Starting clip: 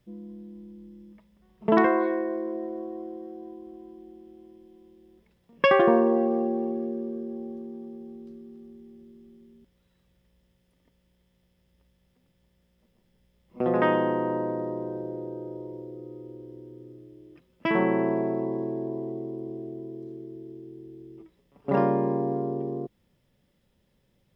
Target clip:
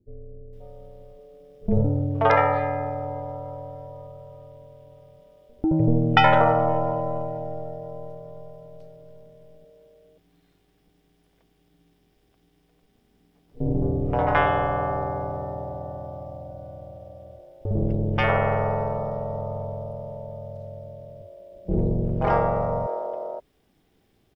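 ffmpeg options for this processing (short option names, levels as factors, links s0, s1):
-filter_complex "[0:a]aeval=exprs='val(0)*sin(2*PI*230*n/s)':c=same,acrossover=split=410[s0][s1];[s1]adelay=530[s2];[s0][s2]amix=inputs=2:normalize=0,volume=2.37"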